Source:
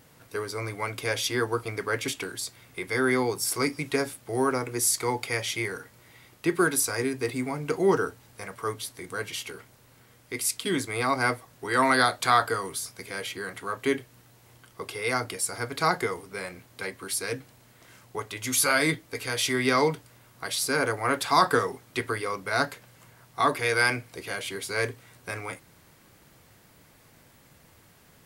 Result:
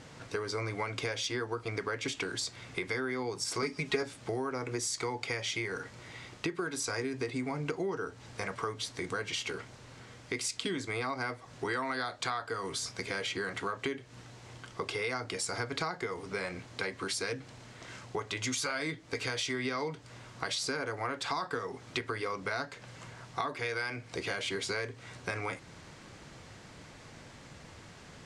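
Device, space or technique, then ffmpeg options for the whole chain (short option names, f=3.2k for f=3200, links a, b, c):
serial compression, peaks first: -filter_complex "[0:a]lowpass=f=7.4k:w=0.5412,lowpass=f=7.4k:w=1.3066,acompressor=threshold=-33dB:ratio=10,acompressor=threshold=-45dB:ratio=1.5,asettb=1/sr,asplit=3[a][b][c];[a]atrim=end=3.624[d];[b]atrim=start=3.62:end=4.03,asetpts=PTS-STARTPTS,afade=t=in:d=0.004:c=qsin,afade=t=out:st=0.406:d=0.004:c=qsin,aecho=1:1:4.8:0.94,atrim=end_sample=18081[e];[c]atrim=start=4.026[f];[d][e]acrossfade=d=0.004:c1=hsin:c2=qsin[g];[g][f]acrossfade=d=0.004:c1=qsin:c2=hsin,volume=6.5dB"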